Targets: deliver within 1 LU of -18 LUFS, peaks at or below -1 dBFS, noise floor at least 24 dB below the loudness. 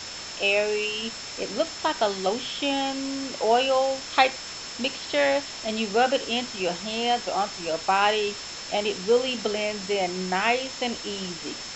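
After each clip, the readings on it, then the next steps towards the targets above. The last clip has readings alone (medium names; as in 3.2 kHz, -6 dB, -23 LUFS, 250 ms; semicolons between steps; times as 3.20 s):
steady tone 5.3 kHz; tone level -39 dBFS; noise floor -37 dBFS; noise floor target -50 dBFS; loudness -25.5 LUFS; peak level -4.0 dBFS; loudness target -18.0 LUFS
-> band-stop 5.3 kHz, Q 30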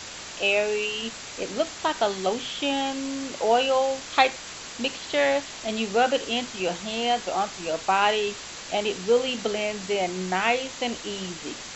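steady tone not found; noise floor -39 dBFS; noise floor target -50 dBFS
-> noise reduction 11 dB, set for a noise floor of -39 dBFS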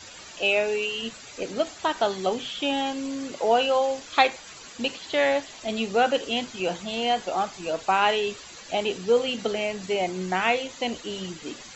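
noise floor -44 dBFS; noise floor target -50 dBFS
-> noise reduction 6 dB, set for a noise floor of -44 dBFS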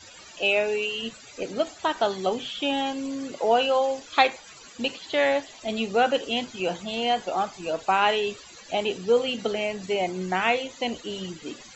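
noise floor -47 dBFS; noise floor target -50 dBFS
-> noise reduction 6 dB, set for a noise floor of -47 dBFS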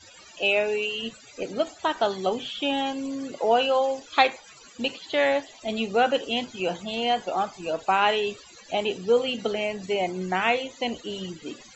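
noise floor -50 dBFS; loudness -26.0 LUFS; peak level -4.0 dBFS; loudness target -18.0 LUFS
-> trim +8 dB; peak limiter -1 dBFS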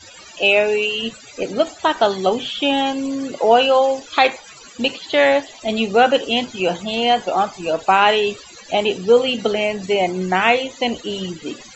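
loudness -18.0 LUFS; peak level -1.0 dBFS; noise floor -42 dBFS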